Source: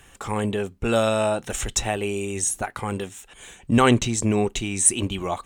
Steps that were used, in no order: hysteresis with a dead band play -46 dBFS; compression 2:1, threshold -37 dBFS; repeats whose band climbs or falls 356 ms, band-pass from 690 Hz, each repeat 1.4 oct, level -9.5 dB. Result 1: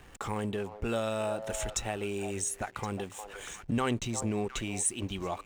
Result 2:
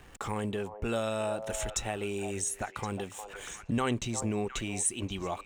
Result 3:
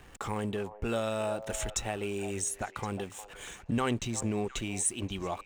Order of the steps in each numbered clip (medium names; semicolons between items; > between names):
repeats whose band climbs or falls > compression > hysteresis with a dead band; hysteresis with a dead band > repeats whose band climbs or falls > compression; compression > hysteresis with a dead band > repeats whose band climbs or falls